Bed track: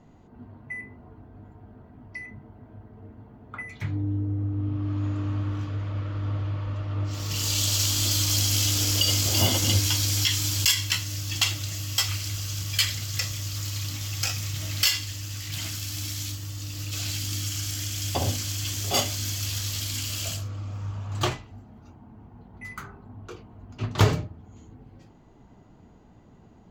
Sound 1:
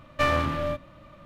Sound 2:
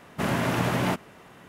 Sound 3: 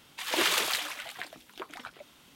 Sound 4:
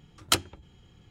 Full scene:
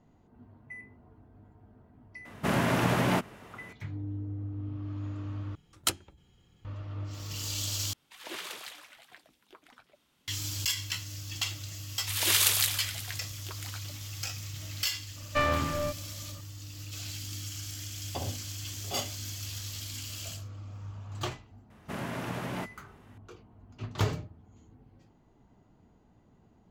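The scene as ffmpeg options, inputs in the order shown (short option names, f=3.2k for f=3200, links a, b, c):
-filter_complex "[2:a]asplit=2[a][b];[3:a]asplit=2[c][d];[0:a]volume=-9dB[e];[4:a]highshelf=f=7.4k:g=9[f];[c]lowshelf=f=200:g=4.5[g];[d]crystalizer=i=5.5:c=0[h];[1:a]lowpass=9.1k[i];[e]asplit=3[j][k][l];[j]atrim=end=5.554[m];[f]atrim=end=1.1,asetpts=PTS-STARTPTS,volume=-7.5dB[n];[k]atrim=start=6.646:end=7.934[o];[g]atrim=end=2.35,asetpts=PTS-STARTPTS,volume=-14dB[p];[l]atrim=start=10.276[q];[a]atrim=end=1.48,asetpts=PTS-STARTPTS,volume=-1dB,afade=t=in:d=0.004:c=hsin,afade=t=out:st=1.476:d=0.004:c=hsin,adelay=2250[r];[h]atrim=end=2.35,asetpts=PTS-STARTPTS,volume=-8.5dB,afade=t=in:d=0.004:c=hsin,afade=t=out:st=2.346:d=0.004:c=hsin,adelay=11890[s];[i]atrim=end=1.25,asetpts=PTS-STARTPTS,volume=-3.5dB,afade=t=in:d=0.004:c=hsin,afade=t=out:st=1.246:d=0.004:c=hsin,adelay=15160[t];[b]atrim=end=1.48,asetpts=PTS-STARTPTS,volume=-10.5dB,afade=t=in:d=0.004:c=hsin,afade=t=out:st=1.476:d=0.004:c=hsin,adelay=21700[u];[m][n]acrossfade=d=0.004:c1=hsin:c2=hsin[v];[v][o]acrossfade=d=0.004:c1=hsin:c2=hsin[w];[w][p]acrossfade=d=0.004:c1=hsin:c2=hsin[x];[x][q]acrossfade=d=0.004:c1=hsin:c2=hsin[y];[y][r][s][t][u]amix=inputs=5:normalize=0"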